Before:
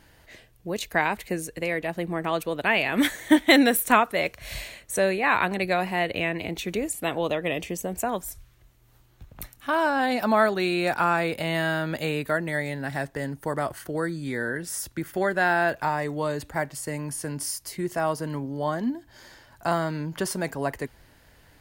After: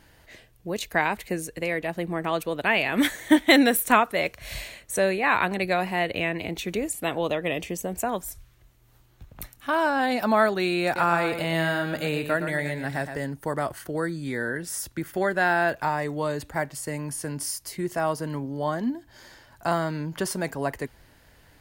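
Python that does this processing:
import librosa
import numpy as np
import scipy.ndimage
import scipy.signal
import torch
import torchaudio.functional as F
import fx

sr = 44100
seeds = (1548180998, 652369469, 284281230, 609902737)

y = fx.echo_feedback(x, sr, ms=116, feedback_pct=27, wet_db=-8.5, at=(10.84, 13.19))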